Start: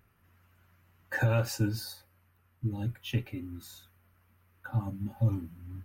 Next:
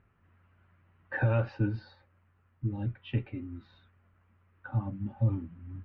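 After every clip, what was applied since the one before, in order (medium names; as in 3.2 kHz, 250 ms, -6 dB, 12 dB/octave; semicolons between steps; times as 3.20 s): Bessel low-pass 2.1 kHz, order 8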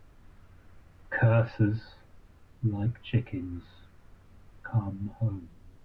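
fade out at the end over 1.25 s; added noise brown -57 dBFS; trim +4 dB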